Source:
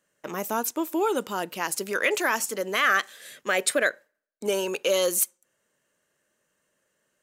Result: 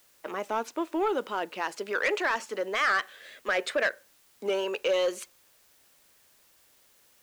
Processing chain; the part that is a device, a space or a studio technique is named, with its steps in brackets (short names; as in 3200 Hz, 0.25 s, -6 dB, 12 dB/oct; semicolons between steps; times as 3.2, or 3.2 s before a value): tape answering machine (BPF 320–3300 Hz; soft clip -18.5 dBFS, distortion -15 dB; wow and flutter; white noise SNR 31 dB)